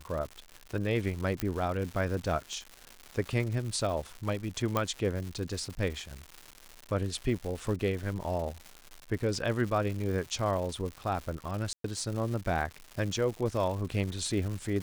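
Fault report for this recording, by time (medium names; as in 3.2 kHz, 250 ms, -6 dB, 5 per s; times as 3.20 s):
crackle 260 per s -36 dBFS
1.40 s: pop -15 dBFS
4.77 s: pop -14 dBFS
11.73–11.84 s: dropout 113 ms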